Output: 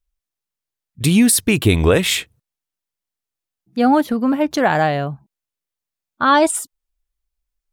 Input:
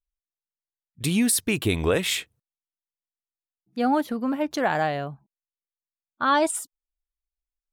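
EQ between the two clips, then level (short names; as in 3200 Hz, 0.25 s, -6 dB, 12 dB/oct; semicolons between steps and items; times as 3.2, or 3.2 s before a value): low shelf 170 Hz +6 dB; +7.0 dB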